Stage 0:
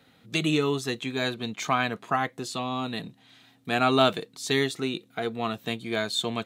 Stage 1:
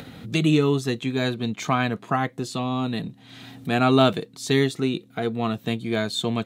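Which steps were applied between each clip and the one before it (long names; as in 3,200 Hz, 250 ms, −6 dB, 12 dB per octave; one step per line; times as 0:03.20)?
low-shelf EQ 360 Hz +10 dB
upward compression, threshold −29 dBFS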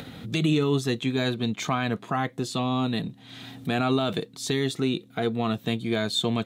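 parametric band 3,500 Hz +3.5 dB 0.25 octaves
brickwall limiter −14 dBFS, peak gain reduction 11 dB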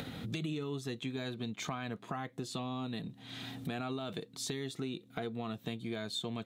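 downward compressor 4 to 1, threshold −35 dBFS, peak gain reduction 13.5 dB
level −2 dB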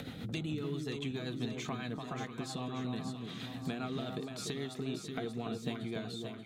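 fade-out on the ending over 0.53 s
rotating-speaker cabinet horn 7.5 Hz
delay that swaps between a low-pass and a high-pass 291 ms, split 1,200 Hz, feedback 72%, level −4 dB
level +1 dB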